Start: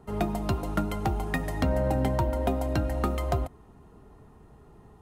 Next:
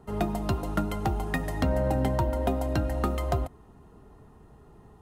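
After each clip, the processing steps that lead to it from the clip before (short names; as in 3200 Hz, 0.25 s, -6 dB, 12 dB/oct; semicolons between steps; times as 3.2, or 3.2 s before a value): notch 2300 Hz, Q 18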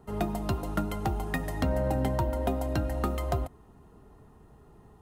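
high shelf 12000 Hz +5 dB; gain -2 dB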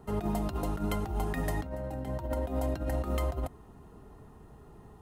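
negative-ratio compressor -31 dBFS, ratio -0.5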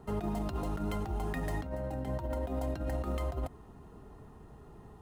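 median filter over 3 samples; limiter -26 dBFS, peak gain reduction 6.5 dB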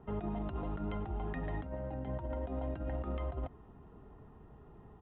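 air absorption 210 m; downsampling 8000 Hz; gain -3 dB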